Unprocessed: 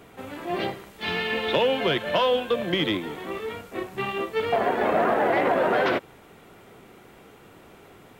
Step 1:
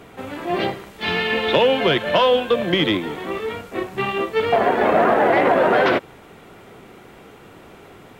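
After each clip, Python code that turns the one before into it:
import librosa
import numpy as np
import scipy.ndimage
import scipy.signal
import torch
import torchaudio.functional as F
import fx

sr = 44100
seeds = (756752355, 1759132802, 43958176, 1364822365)

y = fx.high_shelf(x, sr, hz=8900.0, db=-6.0)
y = y * librosa.db_to_amplitude(6.0)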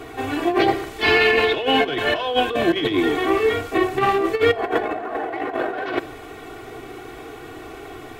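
y = x + 0.91 * np.pad(x, (int(2.7 * sr / 1000.0), 0))[:len(x)]
y = fx.over_compress(y, sr, threshold_db=-19.0, ratio=-0.5)
y = fx.room_shoebox(y, sr, seeds[0], volume_m3=2000.0, walls='furnished', distance_m=0.54)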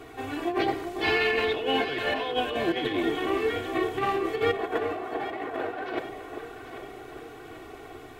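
y = fx.echo_alternate(x, sr, ms=394, hz=1100.0, feedback_pct=69, wet_db=-7)
y = y * librosa.db_to_amplitude(-8.5)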